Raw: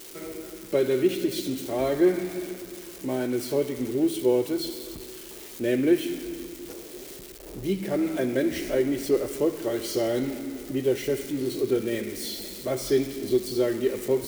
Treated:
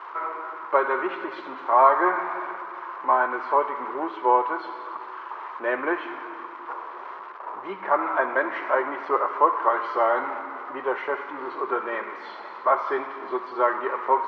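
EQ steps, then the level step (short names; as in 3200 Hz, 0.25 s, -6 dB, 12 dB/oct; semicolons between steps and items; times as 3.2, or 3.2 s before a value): resonant high-pass 1000 Hz, resonance Q 6.3; synth low-pass 1300 Hz, resonance Q 2; air absorption 170 m; +8.5 dB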